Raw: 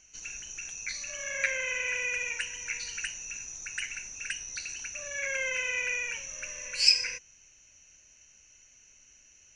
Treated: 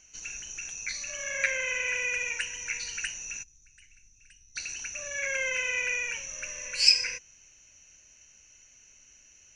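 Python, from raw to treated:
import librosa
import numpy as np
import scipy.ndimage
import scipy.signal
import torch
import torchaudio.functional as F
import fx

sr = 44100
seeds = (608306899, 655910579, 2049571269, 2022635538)

y = fx.tone_stack(x, sr, knobs='10-0-1', at=(3.42, 4.55), fade=0.02)
y = y * librosa.db_to_amplitude(1.5)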